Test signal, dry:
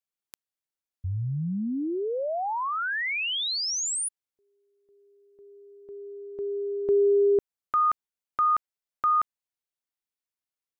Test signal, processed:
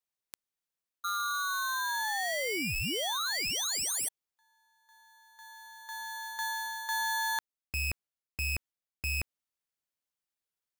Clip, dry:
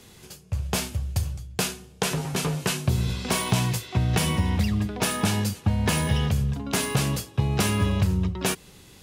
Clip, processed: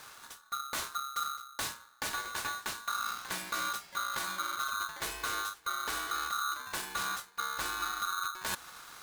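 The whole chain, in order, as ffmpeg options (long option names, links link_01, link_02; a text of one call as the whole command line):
ffmpeg -i in.wav -af "areverse,acompressor=threshold=-30dB:ratio=8:attack=3.8:release=711:knee=1:detection=rms,areverse,aeval=exprs='val(0)*sgn(sin(2*PI*1300*n/s))':channel_layout=same" out.wav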